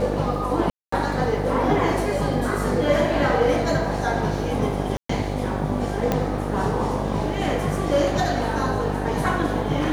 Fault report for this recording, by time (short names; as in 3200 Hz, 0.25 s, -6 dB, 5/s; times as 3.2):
buzz 50 Hz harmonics 17 -27 dBFS
0.7–0.92 gap 0.224 s
4.97–5.09 gap 0.124 s
6.12 pop -8 dBFS